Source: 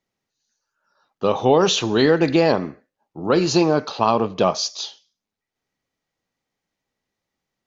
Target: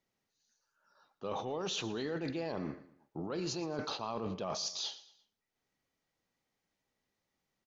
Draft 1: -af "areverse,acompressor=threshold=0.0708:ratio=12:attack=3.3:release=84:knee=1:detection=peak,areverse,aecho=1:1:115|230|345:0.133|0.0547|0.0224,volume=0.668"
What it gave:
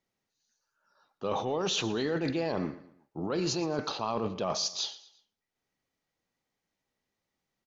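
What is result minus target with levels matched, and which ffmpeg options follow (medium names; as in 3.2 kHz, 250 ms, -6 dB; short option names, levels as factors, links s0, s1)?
compression: peak gain reduction -7 dB
-af "areverse,acompressor=threshold=0.0299:ratio=12:attack=3.3:release=84:knee=1:detection=peak,areverse,aecho=1:1:115|230|345:0.133|0.0547|0.0224,volume=0.668"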